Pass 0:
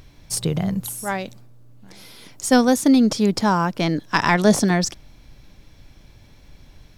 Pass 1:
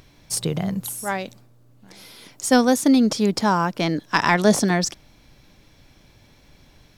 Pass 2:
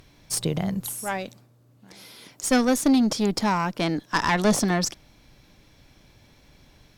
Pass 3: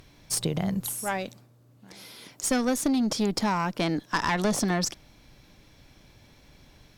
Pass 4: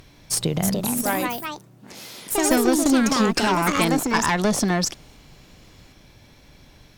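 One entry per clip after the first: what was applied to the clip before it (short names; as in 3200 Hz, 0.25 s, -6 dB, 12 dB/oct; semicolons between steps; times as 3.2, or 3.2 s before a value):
low shelf 97 Hz -10 dB
tube stage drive 12 dB, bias 0.45
compressor, threshold -22 dBFS, peak gain reduction 6.5 dB
echoes that change speed 0.385 s, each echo +4 st, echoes 2; gain +4.5 dB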